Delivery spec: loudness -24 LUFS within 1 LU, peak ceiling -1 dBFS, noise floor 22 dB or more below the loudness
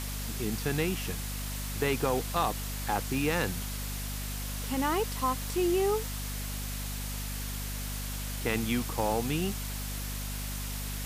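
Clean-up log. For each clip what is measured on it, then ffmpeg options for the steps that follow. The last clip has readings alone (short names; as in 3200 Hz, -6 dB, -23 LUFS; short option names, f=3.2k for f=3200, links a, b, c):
hum 50 Hz; harmonics up to 250 Hz; hum level -34 dBFS; noise floor -36 dBFS; noise floor target -54 dBFS; loudness -32.0 LUFS; peak -13.5 dBFS; loudness target -24.0 LUFS
-> -af "bandreject=f=50:t=h:w=6,bandreject=f=100:t=h:w=6,bandreject=f=150:t=h:w=6,bandreject=f=200:t=h:w=6,bandreject=f=250:t=h:w=6"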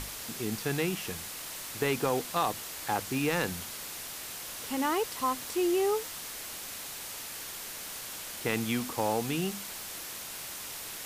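hum none; noise floor -41 dBFS; noise floor target -55 dBFS
-> -af "afftdn=nr=14:nf=-41"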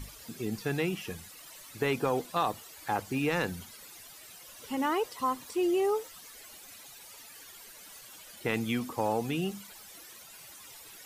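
noise floor -51 dBFS; noise floor target -54 dBFS
-> -af "afftdn=nr=6:nf=-51"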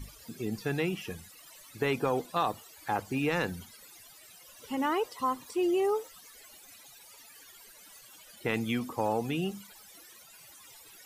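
noise floor -54 dBFS; loudness -32.0 LUFS; peak -14.5 dBFS; loudness target -24.0 LUFS
-> -af "volume=8dB"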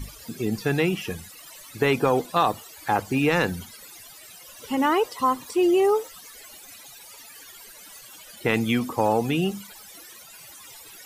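loudness -24.0 LUFS; peak -6.5 dBFS; noise floor -46 dBFS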